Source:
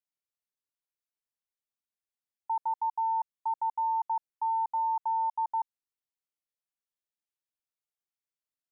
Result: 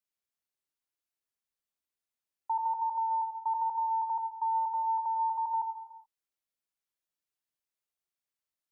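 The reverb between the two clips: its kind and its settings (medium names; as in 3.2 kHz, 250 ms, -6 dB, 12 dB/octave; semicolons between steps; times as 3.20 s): gated-style reverb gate 450 ms falling, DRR 5.5 dB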